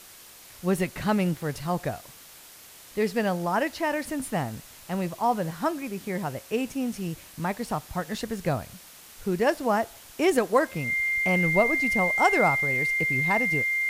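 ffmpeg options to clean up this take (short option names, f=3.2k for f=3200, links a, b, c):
-af "bandreject=f=2.1k:w=30,afwtdn=0.0045"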